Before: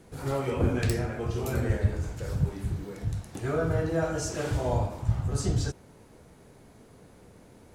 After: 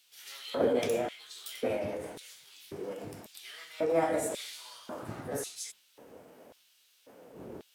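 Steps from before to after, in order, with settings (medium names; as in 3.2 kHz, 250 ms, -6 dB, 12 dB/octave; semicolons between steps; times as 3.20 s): wind noise 92 Hz -37 dBFS; LFO high-pass square 0.92 Hz 290–2700 Hz; formant shift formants +5 st; trim -2.5 dB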